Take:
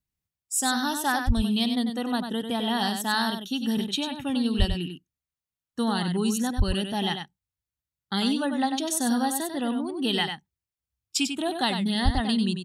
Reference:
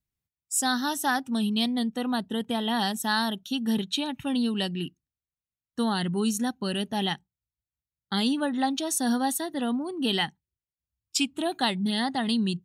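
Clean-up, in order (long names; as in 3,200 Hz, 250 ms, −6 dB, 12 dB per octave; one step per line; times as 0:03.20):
high-pass at the plosives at 0:01.26/0:04.58/0:06.57/0:12.04
echo removal 96 ms −7 dB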